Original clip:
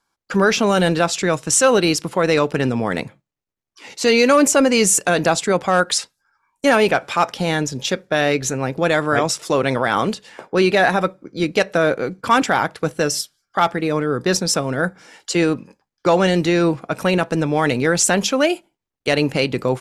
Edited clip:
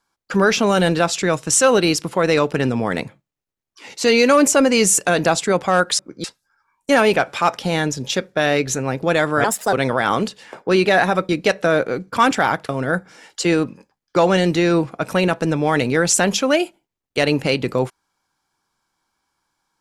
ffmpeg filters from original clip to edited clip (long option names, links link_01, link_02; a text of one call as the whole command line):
ffmpeg -i in.wav -filter_complex "[0:a]asplit=7[link_01][link_02][link_03][link_04][link_05][link_06][link_07];[link_01]atrim=end=5.992[link_08];[link_02]atrim=start=11.148:end=11.402[link_09];[link_03]atrim=start=5.988:end=9.194[link_10];[link_04]atrim=start=9.19:end=9.59,asetpts=PTS-STARTPTS,asetrate=60858,aresample=44100[link_11];[link_05]atrim=start=9.586:end=11.152[link_12];[link_06]atrim=start=11.398:end=12.802[link_13];[link_07]atrim=start=14.588[link_14];[link_08][link_09]acrossfade=duration=0.004:curve1=hsin:curve2=hsin[link_15];[link_15][link_10]acrossfade=duration=0.004:curve1=hsin:curve2=hsin[link_16];[link_16][link_11]acrossfade=duration=0.004:curve1=hsin:curve2=hsin[link_17];[link_17][link_12]acrossfade=duration=0.004:curve1=hsin:curve2=hsin[link_18];[link_18][link_13]acrossfade=duration=0.004:curve1=hsin:curve2=hsin[link_19];[link_19][link_14]acrossfade=duration=0.004:curve1=hsin:curve2=hsin" out.wav